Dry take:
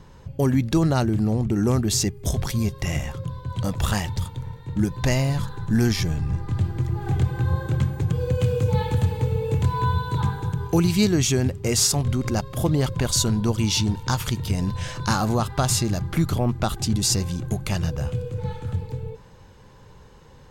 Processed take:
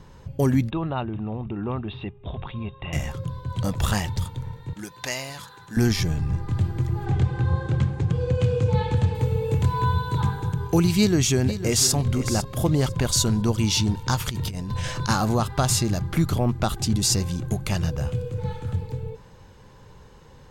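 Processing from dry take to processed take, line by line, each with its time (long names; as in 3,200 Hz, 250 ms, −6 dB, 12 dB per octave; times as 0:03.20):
0:00.70–0:02.93: Chebyshev low-pass with heavy ripple 3,800 Hz, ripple 9 dB
0:04.73–0:05.77: high-pass filter 1,300 Hz 6 dB per octave
0:07.05–0:09.15: Bessel low-pass filter 6,100 Hz, order 4
0:10.97–0:11.94: delay throw 500 ms, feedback 20%, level −12 dB
0:14.30–0:15.09: compressor whose output falls as the input rises −28 dBFS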